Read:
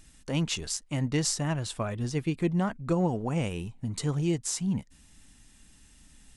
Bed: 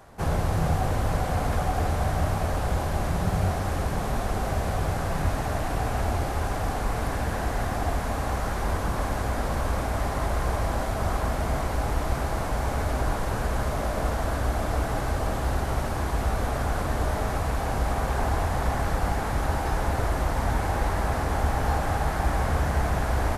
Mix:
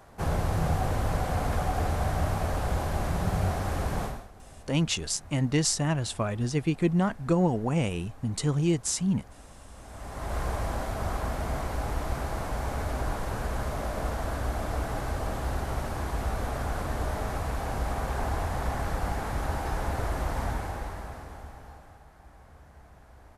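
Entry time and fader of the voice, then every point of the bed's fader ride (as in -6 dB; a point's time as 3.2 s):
4.40 s, +2.5 dB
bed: 4.04 s -2.5 dB
4.31 s -23.5 dB
9.71 s -23.5 dB
10.36 s -4.5 dB
20.43 s -4.5 dB
22.07 s -28 dB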